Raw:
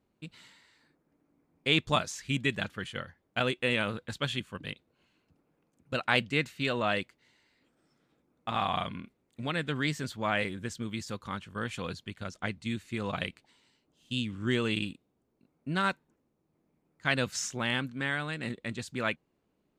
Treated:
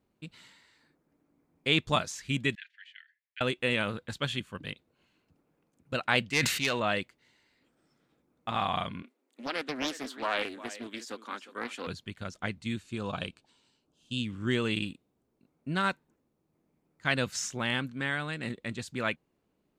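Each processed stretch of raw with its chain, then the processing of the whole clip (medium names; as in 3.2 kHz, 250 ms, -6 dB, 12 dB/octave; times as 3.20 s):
2.55–3.41 s: steep high-pass 1.7 kHz 72 dB/octave + tape spacing loss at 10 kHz 35 dB
6.30–6.80 s: self-modulated delay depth 0.085 ms + tilt shelf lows -4 dB, about 740 Hz + decay stretcher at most 47 dB/s
9.02–11.87 s: elliptic high-pass 250 Hz, stop band 50 dB + delay 357 ms -15.5 dB + loudspeaker Doppler distortion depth 0.49 ms
12.80–14.20 s: Chebyshev low-pass 9 kHz + peaking EQ 2 kHz -13.5 dB 0.21 oct
whole clip: none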